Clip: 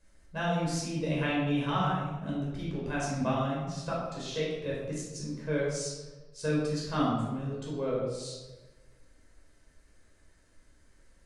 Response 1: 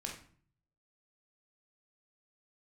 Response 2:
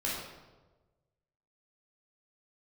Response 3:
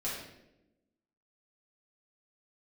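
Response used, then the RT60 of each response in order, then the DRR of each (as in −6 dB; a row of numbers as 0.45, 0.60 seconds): 2; 0.50, 1.2, 0.90 seconds; −0.5, −6.0, −8.5 decibels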